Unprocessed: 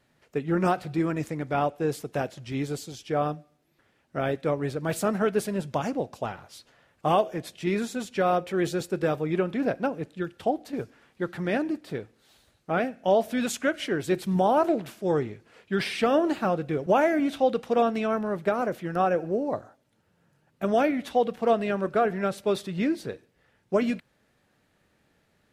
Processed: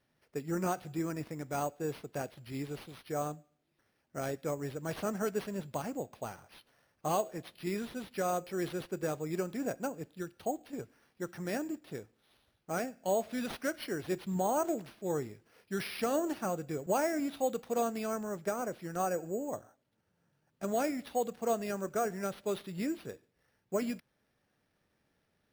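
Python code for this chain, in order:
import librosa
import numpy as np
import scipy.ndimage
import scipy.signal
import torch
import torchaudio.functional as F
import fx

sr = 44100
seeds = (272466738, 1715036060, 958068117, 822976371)

y = np.repeat(x[::6], 6)[:len(x)]
y = F.gain(torch.from_numpy(y), -9.0).numpy()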